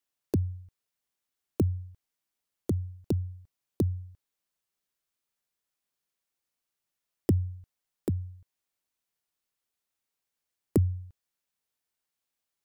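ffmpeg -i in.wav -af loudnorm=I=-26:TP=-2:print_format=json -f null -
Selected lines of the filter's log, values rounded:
"input_i" : "-32.0",
"input_tp" : "-12.6",
"input_lra" : "2.2",
"input_thresh" : "-43.2",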